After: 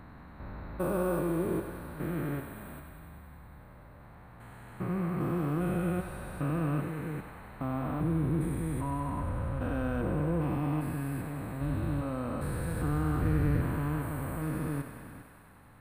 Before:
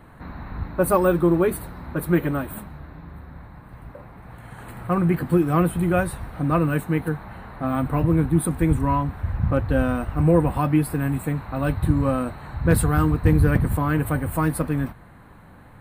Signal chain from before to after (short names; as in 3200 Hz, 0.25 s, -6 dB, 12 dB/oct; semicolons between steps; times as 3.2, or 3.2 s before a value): stepped spectrum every 0.4 s; thinning echo 97 ms, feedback 82%, high-pass 380 Hz, level -8.5 dB; gain -8 dB